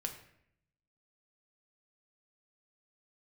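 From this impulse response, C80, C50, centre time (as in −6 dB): 12.0 dB, 9.5 dB, 17 ms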